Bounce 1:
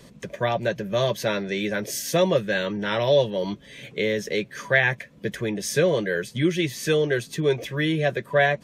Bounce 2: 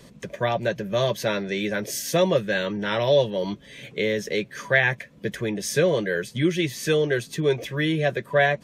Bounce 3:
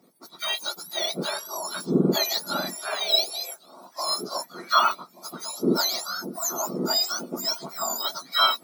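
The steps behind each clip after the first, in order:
nothing audible
spectrum mirrored in octaves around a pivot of 1500 Hz; delay with a stepping band-pass 0.591 s, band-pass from 240 Hz, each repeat 1.4 oct, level -11.5 dB; three-band expander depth 40%

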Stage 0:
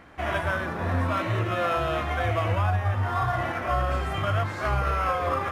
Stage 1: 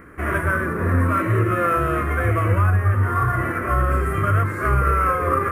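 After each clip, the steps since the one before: EQ curve 270 Hz 0 dB, 420 Hz +4 dB, 790 Hz -16 dB, 1200 Hz +1 dB, 2100 Hz -3 dB, 3600 Hz -22 dB, 6400 Hz -12 dB, 9900 Hz +5 dB; gain +7.5 dB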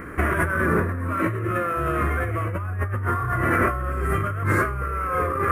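negative-ratio compressor -26 dBFS, ratio -1; gain +2 dB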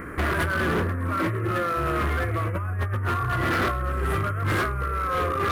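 hard clip -20.5 dBFS, distortion -11 dB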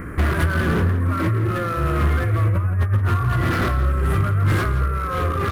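tone controls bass +9 dB, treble +2 dB; outdoor echo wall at 29 m, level -11 dB

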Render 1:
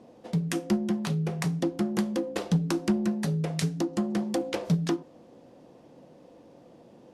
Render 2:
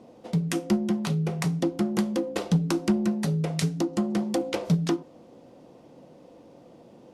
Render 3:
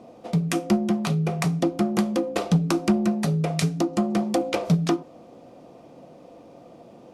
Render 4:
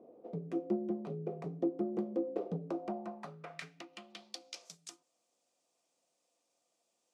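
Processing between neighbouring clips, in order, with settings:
notch 1700 Hz, Q 14; gain +2 dB
small resonant body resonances 690/1200/2400 Hz, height 7 dB, ringing for 25 ms; gain +2.5 dB
band-pass sweep 410 Hz -> 7800 Hz, 2.5–4.8; dynamic EQ 1300 Hz, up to -3 dB, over -49 dBFS, Q 0.78; gain -5.5 dB

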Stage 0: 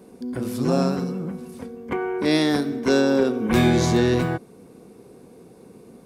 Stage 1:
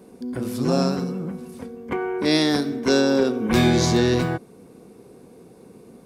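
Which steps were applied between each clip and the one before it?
dynamic EQ 4900 Hz, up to +6 dB, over -44 dBFS, Q 1.6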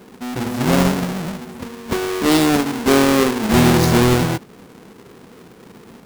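half-waves squared off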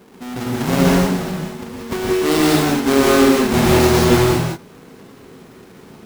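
non-linear reverb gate 0.21 s rising, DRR -3 dB; gain -4 dB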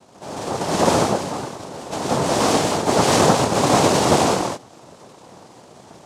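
noise vocoder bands 2; gain -3 dB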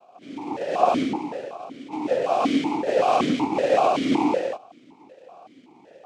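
vowel sequencer 5.3 Hz; gain +6.5 dB

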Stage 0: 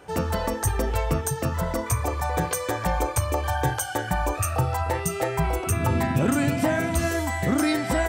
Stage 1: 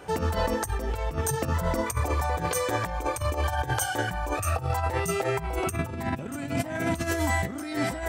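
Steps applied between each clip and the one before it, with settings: negative-ratio compressor -27 dBFS, ratio -0.5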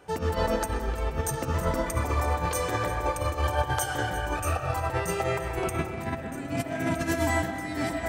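split-band echo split 560 Hz, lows 0.772 s, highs 0.345 s, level -14 dB; reverb RT60 1.1 s, pre-delay 80 ms, DRR 2.5 dB; upward expander 1.5:1, over -38 dBFS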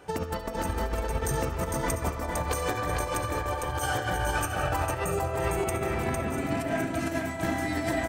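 negative-ratio compressor -30 dBFS, ratio -0.5; spectral gain 5.04–5.38, 820–6300 Hz -13 dB; tapped delay 70/455/695 ms -14/-3.5/-13.5 dB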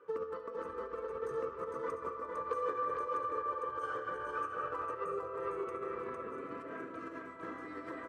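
double band-pass 740 Hz, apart 1.3 oct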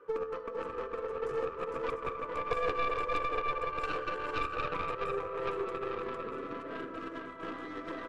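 tracing distortion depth 0.24 ms; air absorption 56 m; gain +3.5 dB

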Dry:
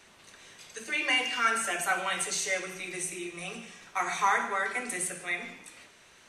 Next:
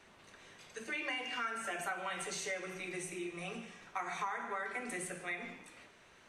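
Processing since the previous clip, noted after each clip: high shelf 3200 Hz -10.5 dB; compressor 6:1, threshold -34 dBFS, peak gain reduction 12 dB; gain -1.5 dB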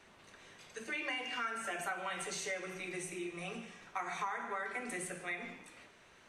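nothing audible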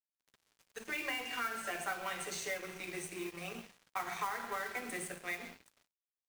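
crossover distortion -50.5 dBFS; modulation noise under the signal 15 dB; gain +2 dB

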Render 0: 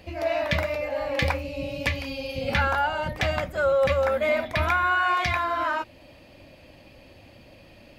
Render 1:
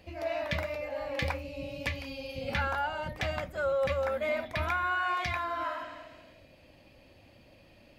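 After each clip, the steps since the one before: spectral repair 5.71–6.46, 250–8500 Hz both; gain -7.5 dB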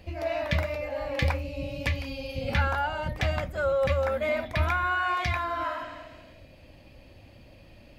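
low shelf 120 Hz +9.5 dB; gain +3 dB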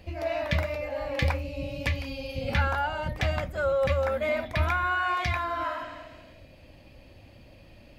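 nothing audible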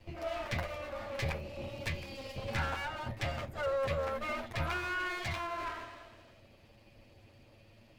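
minimum comb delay 8.9 ms; gain -6.5 dB

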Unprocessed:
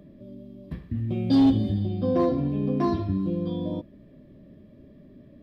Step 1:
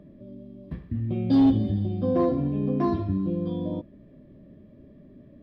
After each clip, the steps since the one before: high shelf 3800 Hz -11 dB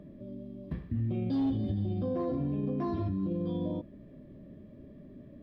limiter -25 dBFS, peak gain reduction 11 dB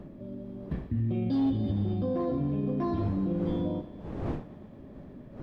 wind noise 320 Hz -45 dBFS; thinning echo 0.114 s, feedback 81%, high-pass 160 Hz, level -17.5 dB; gain +2.5 dB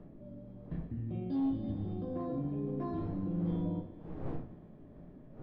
LPF 2300 Hz 6 dB/oct; on a send at -4 dB: reverb RT60 0.40 s, pre-delay 6 ms; on the sum: gain -8.5 dB

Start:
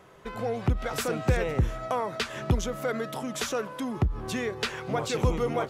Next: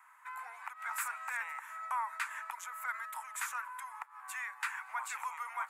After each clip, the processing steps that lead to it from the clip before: Chebyshev high-pass 910 Hz, order 5; band shelf 4200 Hz -15.5 dB 1.3 oct; gain -1.5 dB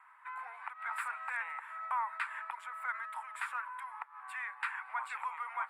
running mean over 7 samples; gain +1.5 dB; Opus 64 kbps 48000 Hz

